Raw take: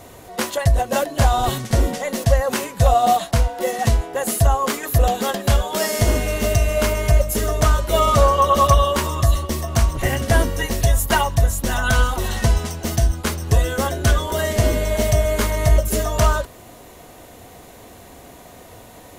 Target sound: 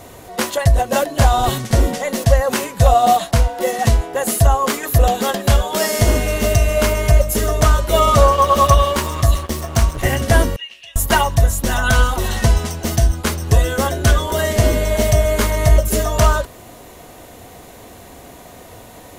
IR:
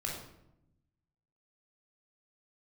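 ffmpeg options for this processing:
-filter_complex "[0:a]asettb=1/sr,asplit=3[link_01][link_02][link_03];[link_01]atrim=end=8.324[link_04];[link_02]atrim=start=8.32:end=10.04,asetpts=PTS-STARTPTS,afade=type=in:duration=0.004:curve=qsin,afade=type=out:start_time=1.716:duration=0.004:curve=qsin,aeval=exprs='sgn(val(0))*max(abs(val(0))-0.0251,0)':channel_layout=same[link_05];[link_03]atrim=start=10.036[link_06];[link_04][link_05]acrossfade=duration=0.004:curve1=hsin:curve2=qsin[link_07];[link_07][link_06]acrossfade=duration=0.004:curve1=qsin:curve2=hsin,asettb=1/sr,asplit=3[link_08][link_09][link_10];[link_08]atrim=end=10.564[link_11];[link_09]atrim=start=10.56:end=10.96,asetpts=PTS-STARTPTS,afade=type=in:duration=0.004:curve=qsin,afade=type=out:start_time=0.396:duration=0.004:curve=qsin,bandpass=frequency=2800:width_type=q:width=8.7:csg=0[link_12];[link_10]atrim=start=10.956[link_13];[link_11][link_12]acrossfade=duration=0.004:curve1=hsin:curve2=qsin[link_14];[link_14][link_13]acrossfade=duration=0.004:curve1=qsin:curve2=hsin,volume=3dB"

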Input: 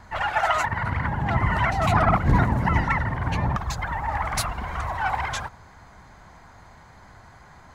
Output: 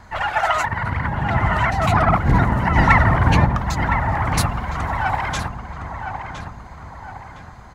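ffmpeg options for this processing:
ffmpeg -i in.wav -filter_complex "[0:a]asplit=3[link_01][link_02][link_03];[link_01]afade=type=out:start_time=2.77:duration=0.02[link_04];[link_02]acontrast=87,afade=type=in:start_time=2.77:duration=0.02,afade=type=out:start_time=3.44:duration=0.02[link_05];[link_03]afade=type=in:start_time=3.44:duration=0.02[link_06];[link_04][link_05][link_06]amix=inputs=3:normalize=0,asplit=2[link_07][link_08];[link_08]adelay=1012,lowpass=frequency=2400:poles=1,volume=-7dB,asplit=2[link_09][link_10];[link_10]adelay=1012,lowpass=frequency=2400:poles=1,volume=0.46,asplit=2[link_11][link_12];[link_12]adelay=1012,lowpass=frequency=2400:poles=1,volume=0.46,asplit=2[link_13][link_14];[link_14]adelay=1012,lowpass=frequency=2400:poles=1,volume=0.46,asplit=2[link_15][link_16];[link_16]adelay=1012,lowpass=frequency=2400:poles=1,volume=0.46[link_17];[link_07][link_09][link_11][link_13][link_15][link_17]amix=inputs=6:normalize=0,volume=3dB" out.wav

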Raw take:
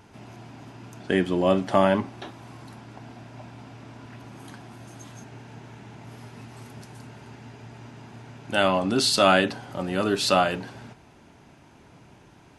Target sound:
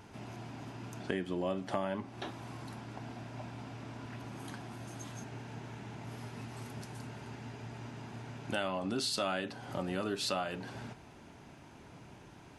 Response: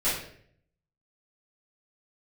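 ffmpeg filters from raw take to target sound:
-af "acompressor=threshold=-32dB:ratio=4,volume=-1.5dB"

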